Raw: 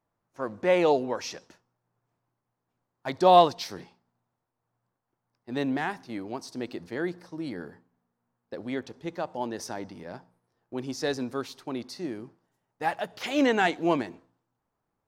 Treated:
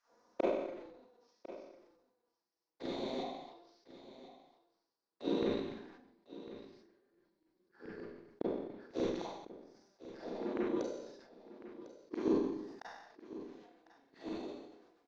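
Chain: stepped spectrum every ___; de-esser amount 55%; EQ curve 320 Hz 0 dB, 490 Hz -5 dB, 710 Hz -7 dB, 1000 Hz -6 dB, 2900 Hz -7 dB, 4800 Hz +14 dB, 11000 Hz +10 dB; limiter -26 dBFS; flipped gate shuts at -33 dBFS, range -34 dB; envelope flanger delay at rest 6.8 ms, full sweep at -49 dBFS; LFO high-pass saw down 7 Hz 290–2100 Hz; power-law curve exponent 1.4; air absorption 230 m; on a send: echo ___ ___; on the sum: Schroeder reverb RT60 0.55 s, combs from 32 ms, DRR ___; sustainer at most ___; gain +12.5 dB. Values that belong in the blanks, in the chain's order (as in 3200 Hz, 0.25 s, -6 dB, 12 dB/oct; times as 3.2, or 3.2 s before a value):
0.4 s, 1.051 s, -15.5 dB, -5.5 dB, 55 dB/s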